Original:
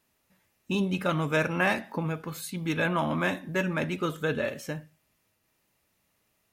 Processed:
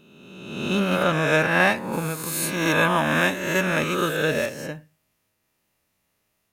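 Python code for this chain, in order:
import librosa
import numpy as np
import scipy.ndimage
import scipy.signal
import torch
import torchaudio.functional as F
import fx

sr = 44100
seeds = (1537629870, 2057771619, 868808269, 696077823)

y = fx.spec_swells(x, sr, rise_s=1.54)
y = fx.high_shelf(y, sr, hz=4800.0, db=9.0, at=(1.92, 4.46))
y = fx.upward_expand(y, sr, threshold_db=-35.0, expansion=1.5)
y = F.gain(torch.from_numpy(y), 4.5).numpy()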